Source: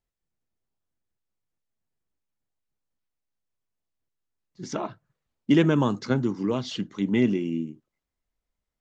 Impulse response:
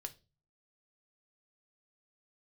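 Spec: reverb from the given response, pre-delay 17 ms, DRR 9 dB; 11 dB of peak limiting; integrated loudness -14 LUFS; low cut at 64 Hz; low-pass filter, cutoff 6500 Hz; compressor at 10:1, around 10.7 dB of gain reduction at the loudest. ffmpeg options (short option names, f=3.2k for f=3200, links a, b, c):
-filter_complex "[0:a]highpass=64,lowpass=6.5k,acompressor=threshold=-25dB:ratio=10,alimiter=level_in=1.5dB:limit=-24dB:level=0:latency=1,volume=-1.5dB,asplit=2[a][b];[1:a]atrim=start_sample=2205,adelay=17[c];[b][c]afir=irnorm=-1:irlink=0,volume=-5.5dB[d];[a][d]amix=inputs=2:normalize=0,volume=21dB"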